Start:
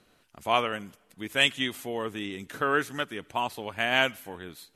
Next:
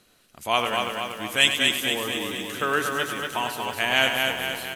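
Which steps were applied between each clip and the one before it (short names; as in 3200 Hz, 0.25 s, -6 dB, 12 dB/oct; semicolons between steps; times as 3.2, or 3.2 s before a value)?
high shelf 3400 Hz +10 dB; on a send: feedback echo 0.236 s, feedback 57%, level -4 dB; on the sum: lo-fi delay 99 ms, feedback 35%, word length 7-bit, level -9 dB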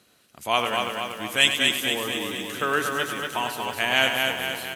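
HPF 72 Hz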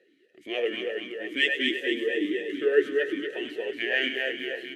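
half-wave gain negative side -3 dB; small resonant body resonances 370/1800 Hz, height 13 dB, ringing for 25 ms; vowel sweep e-i 3.3 Hz; gain +5 dB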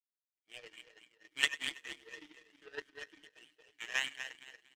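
bell 390 Hz -15 dB 2.4 oct; comb 6.5 ms, depth 93%; power-law curve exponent 2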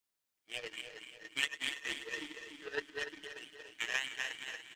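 compressor 5:1, threshold -41 dBFS, peak gain reduction 16.5 dB; on a send: feedback echo 0.292 s, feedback 50%, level -10.5 dB; on the sum: gain +9 dB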